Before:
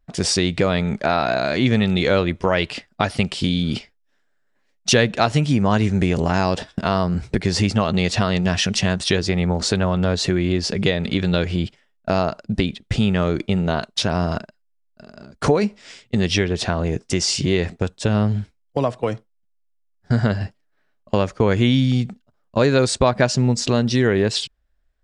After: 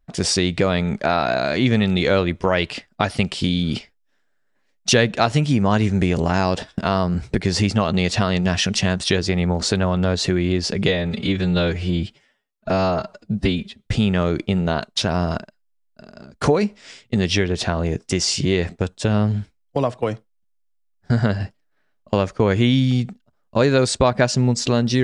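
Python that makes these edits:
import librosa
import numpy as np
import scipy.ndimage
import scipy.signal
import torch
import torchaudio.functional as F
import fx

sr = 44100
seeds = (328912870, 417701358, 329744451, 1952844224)

y = fx.edit(x, sr, fx.stretch_span(start_s=10.88, length_s=1.99, factor=1.5), tone=tone)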